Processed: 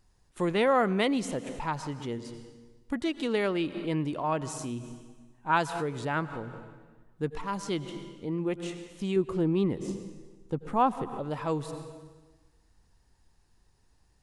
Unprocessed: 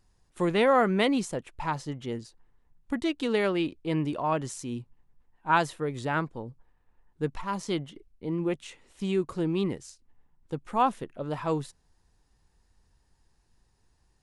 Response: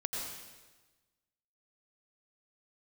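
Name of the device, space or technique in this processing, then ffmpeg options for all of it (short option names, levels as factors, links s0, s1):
ducked reverb: -filter_complex "[0:a]asettb=1/sr,asplit=3[s0][s1][s2];[s0]atrim=end=9.164[s3];[s1]atrim=start=9.16:end=11.17,asetpts=PTS-STARTPTS,afade=t=in:d=0.004:c=qsin,afade=t=out:st=2.006:d=0.004:c=qsin,tiltshelf=f=1400:g=4[s4];[s2]atrim=start=11.166[s5];[s3][s4]acrossfade=d=0.004:c1=hsin:c2=qsin[s6];[s6][s5]acrossfade=d=0.004:c1=qsin:c2=hsin,asplit=3[s7][s8][s9];[1:a]atrim=start_sample=2205[s10];[s8][s10]afir=irnorm=-1:irlink=0[s11];[s9]apad=whole_len=627298[s12];[s11][s12]sidechaincompress=threshold=0.00794:ratio=8:attack=43:release=111,volume=0.531[s13];[s7][s13]amix=inputs=2:normalize=0,volume=0.75"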